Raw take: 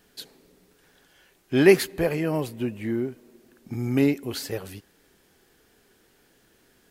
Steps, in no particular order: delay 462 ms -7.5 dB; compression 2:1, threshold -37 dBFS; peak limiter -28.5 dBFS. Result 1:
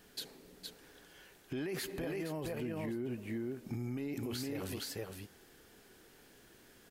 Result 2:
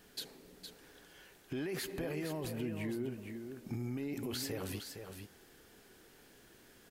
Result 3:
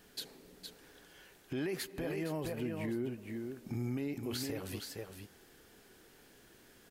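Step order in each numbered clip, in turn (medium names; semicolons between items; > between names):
delay > peak limiter > compression; peak limiter > compression > delay; compression > delay > peak limiter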